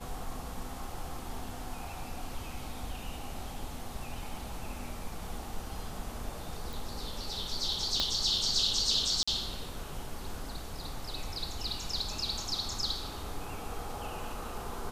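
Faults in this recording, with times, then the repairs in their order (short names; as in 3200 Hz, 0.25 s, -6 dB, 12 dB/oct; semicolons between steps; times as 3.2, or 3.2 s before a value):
6.73 pop
8 pop -14 dBFS
9.23–9.28 gap 45 ms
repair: de-click; interpolate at 9.23, 45 ms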